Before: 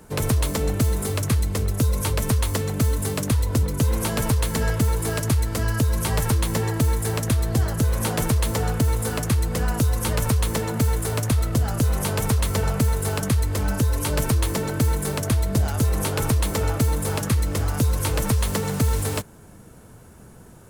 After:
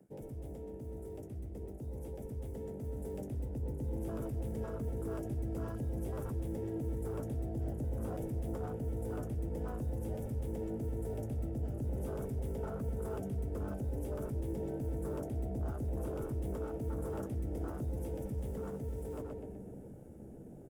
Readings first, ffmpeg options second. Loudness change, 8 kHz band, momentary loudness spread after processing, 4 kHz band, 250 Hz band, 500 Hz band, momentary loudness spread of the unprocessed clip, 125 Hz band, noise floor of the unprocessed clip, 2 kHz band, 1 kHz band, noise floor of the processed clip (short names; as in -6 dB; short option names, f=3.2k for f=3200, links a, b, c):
-16.5 dB, -31.0 dB, 7 LU, under -30 dB, -14.0 dB, -12.0 dB, 2 LU, -17.0 dB, -46 dBFS, -27.5 dB, -20.0 dB, -49 dBFS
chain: -filter_complex "[0:a]acrossover=split=230 2200:gain=0.224 1 0.2[a][b][c];[a][b][c]amix=inputs=3:normalize=0,alimiter=limit=-21.5dB:level=0:latency=1:release=17,bandreject=f=50:t=h:w=6,bandreject=f=100:t=h:w=6,bandreject=f=150:t=h:w=6,bandreject=f=200:t=h:w=6,bandreject=f=250:t=h:w=6,bandreject=f=300:t=h:w=6,bandreject=f=350:t=h:w=6,bandreject=f=400:t=h:w=6,bandreject=f=450:t=h:w=6,asoftclip=type=hard:threshold=-26.5dB,equalizer=f=1k:t=o:w=1.8:g=-14,bandreject=f=4.2k:w=5.6,asplit=2[d][e];[e]adelay=125,lowpass=f=3.3k:p=1,volume=-7dB,asplit=2[f][g];[g]adelay=125,lowpass=f=3.3k:p=1,volume=0.51,asplit=2[h][i];[i]adelay=125,lowpass=f=3.3k:p=1,volume=0.51,asplit=2[j][k];[k]adelay=125,lowpass=f=3.3k:p=1,volume=0.51,asplit=2[l][m];[m]adelay=125,lowpass=f=3.3k:p=1,volume=0.51,asplit=2[n][o];[o]adelay=125,lowpass=f=3.3k:p=1,volume=0.51[p];[d][f][h][j][l][n][p]amix=inputs=7:normalize=0,areverse,acompressor=threshold=-48dB:ratio=5,areverse,afwtdn=0.00224,dynaudnorm=f=450:g=13:m=7dB,crystalizer=i=1:c=0,asplit=2[q][r];[r]adelay=15,volume=-12dB[s];[q][s]amix=inputs=2:normalize=0,volume=4dB"